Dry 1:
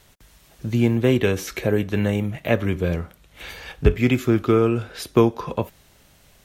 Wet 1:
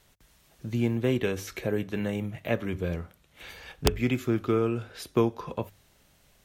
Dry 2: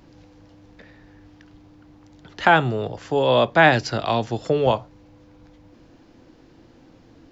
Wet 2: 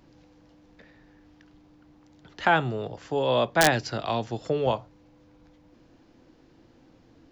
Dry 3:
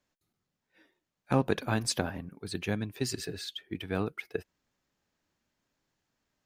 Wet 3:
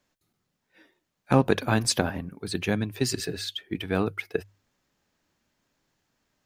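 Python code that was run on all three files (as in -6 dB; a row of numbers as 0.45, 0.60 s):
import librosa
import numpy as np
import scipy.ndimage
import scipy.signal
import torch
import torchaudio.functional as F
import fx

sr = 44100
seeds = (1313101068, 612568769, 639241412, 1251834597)

y = (np.mod(10.0 ** (2.5 / 20.0) * x + 1.0, 2.0) - 1.0) / 10.0 ** (2.5 / 20.0)
y = fx.hum_notches(y, sr, base_hz=50, count=2)
y = y * 10.0 ** (-30 / 20.0) / np.sqrt(np.mean(np.square(y)))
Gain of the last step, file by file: -7.5, -6.0, +6.0 dB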